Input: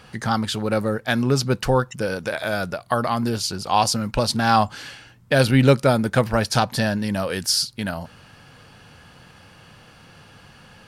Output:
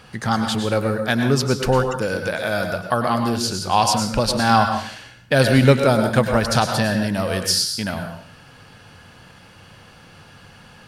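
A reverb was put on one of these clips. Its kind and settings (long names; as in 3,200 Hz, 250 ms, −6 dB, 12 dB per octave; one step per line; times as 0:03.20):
dense smooth reverb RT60 0.51 s, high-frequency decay 0.95×, pre-delay 90 ms, DRR 5 dB
level +1 dB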